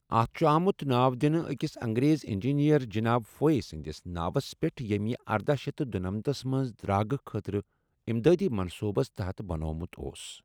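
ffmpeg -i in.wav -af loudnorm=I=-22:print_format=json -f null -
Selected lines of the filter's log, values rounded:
"input_i" : "-29.6",
"input_tp" : "-9.9",
"input_lra" : "4.3",
"input_thresh" : "-39.8",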